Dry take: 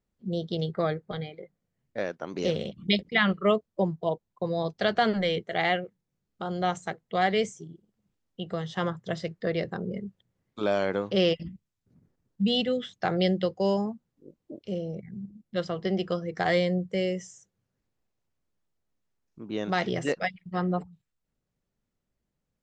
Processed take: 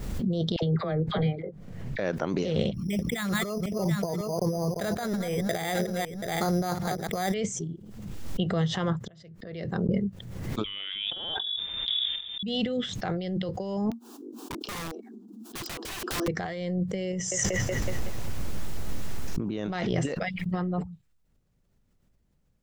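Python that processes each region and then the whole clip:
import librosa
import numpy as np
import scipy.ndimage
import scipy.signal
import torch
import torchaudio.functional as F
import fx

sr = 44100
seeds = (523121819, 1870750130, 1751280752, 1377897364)

y = fx.chain(x, sr, fx.lowpass(hz=2800.0, slope=6),
    fx.dispersion(late='lows', ms=64.0, hz=890.0), at=(0.56, 1.99))
y = fx.chain(y, sr, fx.reverse_delay(ms=184, wet_db=-11),
    fx.echo_single(ms=732, db=-20.5),
    fx.resample_bad(factor=8, down='filtered', up='hold'), at=(2.74, 7.34))
y = fx.chain(y, sr, fx.gate_flip(shuts_db=-34.0, range_db=-33),
    fx.band_squash(depth_pct=40), at=(9.04, 9.89))
y = fx.chain(y, sr, fx.freq_invert(carrier_hz=3600),
    fx.gate_hold(open_db=-58.0, close_db=-64.0, hold_ms=71.0, range_db=-21, attack_ms=1.4, release_ms=100.0),
    fx.env_flatten(amount_pct=70), at=(10.64, 12.43))
y = fx.chain(y, sr, fx.steep_highpass(hz=230.0, slope=96),
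    fx.fixed_phaser(hz=550.0, stages=6),
    fx.overflow_wrap(gain_db=37.5), at=(13.9, 16.28))
y = fx.chain(y, sr, fx.echo_wet_bandpass(ms=186, feedback_pct=36, hz=1300.0, wet_db=-8.5),
    fx.env_flatten(amount_pct=100), at=(17.13, 19.74))
y = fx.over_compress(y, sr, threshold_db=-32.0, ratio=-1.0)
y = fx.low_shelf(y, sr, hz=160.0, db=9.5)
y = fx.pre_swell(y, sr, db_per_s=39.0)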